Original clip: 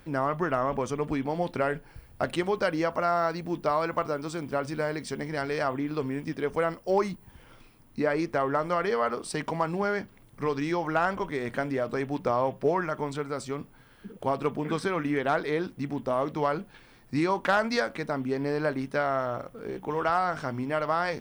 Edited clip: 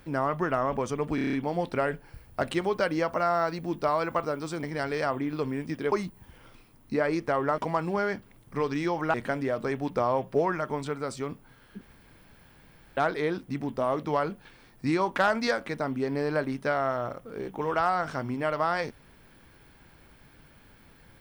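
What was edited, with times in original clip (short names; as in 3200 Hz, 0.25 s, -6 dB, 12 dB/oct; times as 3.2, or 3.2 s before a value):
1.15 stutter 0.03 s, 7 plays
4.45–5.21 cut
6.5–6.98 cut
8.64–9.44 cut
11–11.43 cut
14.1–15.26 room tone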